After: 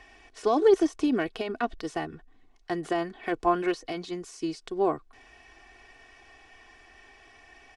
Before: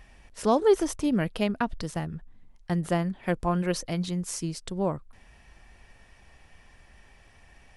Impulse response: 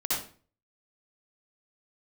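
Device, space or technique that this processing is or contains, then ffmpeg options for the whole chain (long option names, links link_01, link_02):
de-esser from a sidechain: -filter_complex "[0:a]acrossover=split=190 7700:gain=0.178 1 0.112[link_01][link_02][link_03];[link_01][link_02][link_03]amix=inputs=3:normalize=0,aecho=1:1:2.7:0.75,asplit=2[link_04][link_05];[link_05]highpass=5000,apad=whole_len=342511[link_06];[link_04][link_06]sidechaincompress=threshold=-47dB:ratio=8:attack=1.3:release=46,volume=2.5dB"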